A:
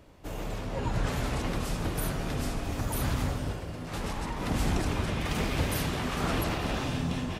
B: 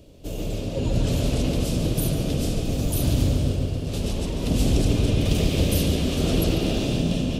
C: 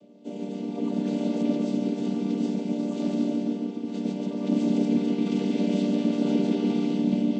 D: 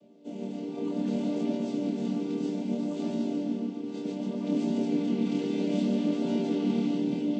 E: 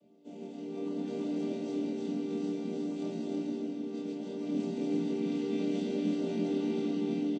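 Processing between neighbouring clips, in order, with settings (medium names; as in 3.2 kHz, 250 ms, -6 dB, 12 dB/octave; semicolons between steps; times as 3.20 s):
high-order bell 1.3 kHz -15.5 dB; filtered feedback delay 143 ms, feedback 72%, low-pass 4.7 kHz, level -5 dB; trim +6.5 dB
vocoder on a held chord minor triad, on G3
chorus 0.63 Hz, depth 5.6 ms
doubling 23 ms -4.5 dB; delay 324 ms -3 dB; trim -7.5 dB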